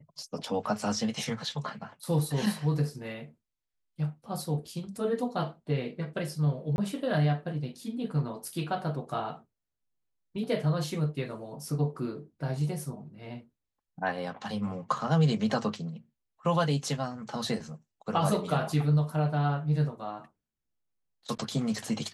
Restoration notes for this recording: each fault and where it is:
6.76–6.78 gap 21 ms

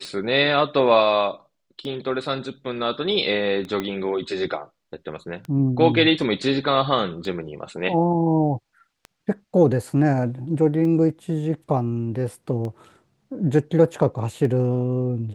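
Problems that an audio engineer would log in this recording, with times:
tick 33 1/3 rpm -21 dBFS
3.8 pop -13 dBFS

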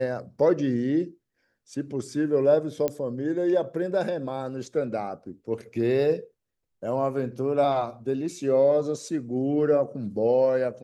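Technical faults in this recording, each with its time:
2.88 pop -13 dBFS

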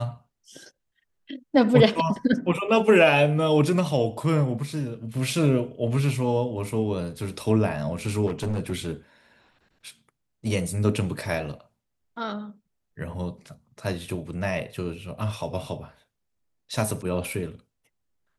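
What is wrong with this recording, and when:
8.26–8.72 clipped -23.5 dBFS

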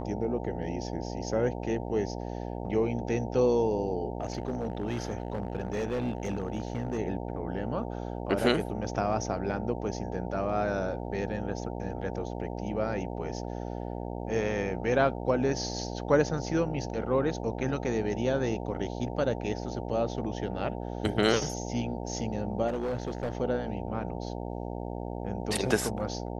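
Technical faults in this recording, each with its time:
buzz 60 Hz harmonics 15 -36 dBFS
4.21–6.99 clipped -26 dBFS
22.67–23.37 clipped -27.5 dBFS

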